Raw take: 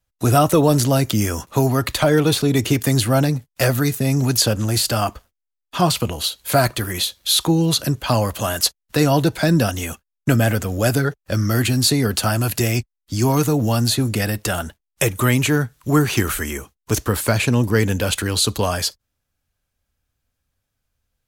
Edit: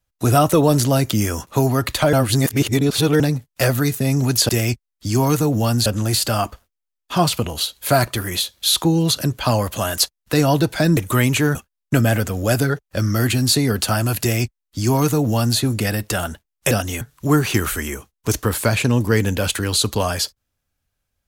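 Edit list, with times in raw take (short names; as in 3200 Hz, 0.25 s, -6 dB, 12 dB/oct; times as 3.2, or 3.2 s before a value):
2.13–3.2 reverse
9.6–9.9 swap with 15.06–15.64
12.56–13.93 copy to 4.49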